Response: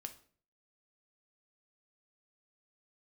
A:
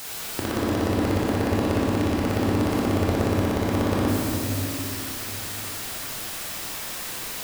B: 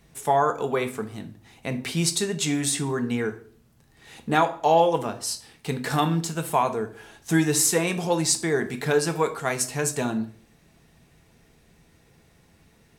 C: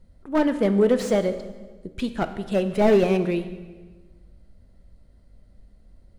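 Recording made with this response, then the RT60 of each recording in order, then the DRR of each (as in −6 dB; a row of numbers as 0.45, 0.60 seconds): B; 2.8, 0.50, 1.4 seconds; −6.0, 6.5, 9.5 decibels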